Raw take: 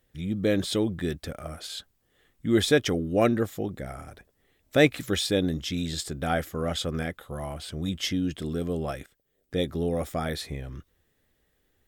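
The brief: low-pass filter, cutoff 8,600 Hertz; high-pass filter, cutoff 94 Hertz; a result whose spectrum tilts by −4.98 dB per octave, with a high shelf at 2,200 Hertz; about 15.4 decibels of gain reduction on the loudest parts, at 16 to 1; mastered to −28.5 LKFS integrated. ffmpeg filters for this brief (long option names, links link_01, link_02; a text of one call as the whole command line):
ffmpeg -i in.wav -af "highpass=94,lowpass=8600,highshelf=frequency=2200:gain=-4.5,acompressor=threshold=-30dB:ratio=16,volume=8.5dB" out.wav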